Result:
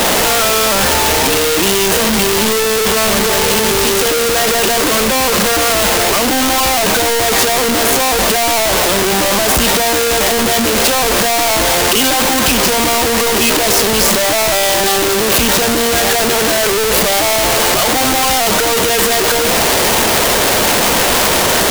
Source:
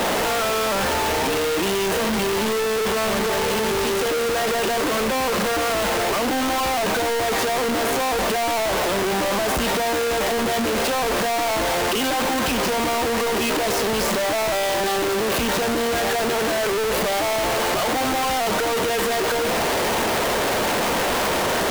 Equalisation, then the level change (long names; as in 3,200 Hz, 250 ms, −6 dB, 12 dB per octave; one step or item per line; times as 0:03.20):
low-shelf EQ 160 Hz +5 dB
high-shelf EQ 3,100 Hz +10 dB
+6.0 dB